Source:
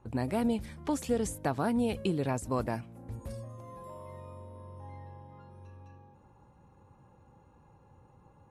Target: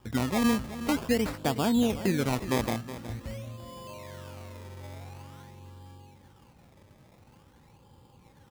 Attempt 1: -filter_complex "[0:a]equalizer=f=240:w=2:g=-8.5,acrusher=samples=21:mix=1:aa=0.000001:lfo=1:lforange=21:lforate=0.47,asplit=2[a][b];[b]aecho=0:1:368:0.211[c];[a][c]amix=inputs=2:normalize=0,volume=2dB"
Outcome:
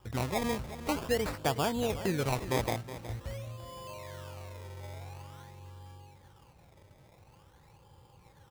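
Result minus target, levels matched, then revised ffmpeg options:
250 Hz band -3.0 dB
-filter_complex "[0:a]equalizer=f=240:w=2:g=3,acrusher=samples=21:mix=1:aa=0.000001:lfo=1:lforange=21:lforate=0.47,asplit=2[a][b];[b]aecho=0:1:368:0.211[c];[a][c]amix=inputs=2:normalize=0,volume=2dB"

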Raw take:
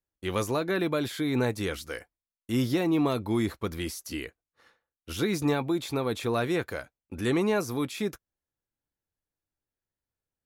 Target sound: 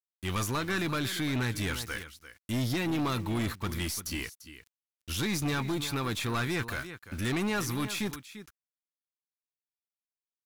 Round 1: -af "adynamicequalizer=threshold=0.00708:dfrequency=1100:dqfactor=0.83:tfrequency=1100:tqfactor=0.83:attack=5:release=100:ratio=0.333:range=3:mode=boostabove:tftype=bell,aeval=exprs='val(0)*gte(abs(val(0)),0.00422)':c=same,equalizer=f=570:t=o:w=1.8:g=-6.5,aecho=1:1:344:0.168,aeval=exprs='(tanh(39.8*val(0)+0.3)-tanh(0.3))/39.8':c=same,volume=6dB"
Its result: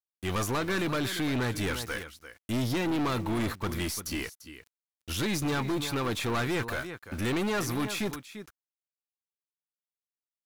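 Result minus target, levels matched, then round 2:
500 Hz band +3.0 dB
-af "adynamicequalizer=threshold=0.00708:dfrequency=1100:dqfactor=0.83:tfrequency=1100:tqfactor=0.83:attack=5:release=100:ratio=0.333:range=3:mode=boostabove:tftype=bell,aeval=exprs='val(0)*gte(abs(val(0)),0.00422)':c=same,equalizer=f=570:t=o:w=1.8:g=-15,aecho=1:1:344:0.168,aeval=exprs='(tanh(39.8*val(0)+0.3)-tanh(0.3))/39.8':c=same,volume=6dB"

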